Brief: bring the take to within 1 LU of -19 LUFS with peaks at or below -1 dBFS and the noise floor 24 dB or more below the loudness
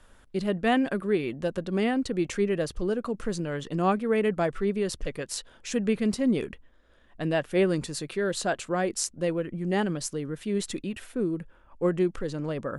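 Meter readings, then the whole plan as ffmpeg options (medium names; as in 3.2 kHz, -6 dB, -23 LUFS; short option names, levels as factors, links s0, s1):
loudness -28.5 LUFS; peak level -9.5 dBFS; loudness target -19.0 LUFS
-> -af "volume=2.99,alimiter=limit=0.891:level=0:latency=1"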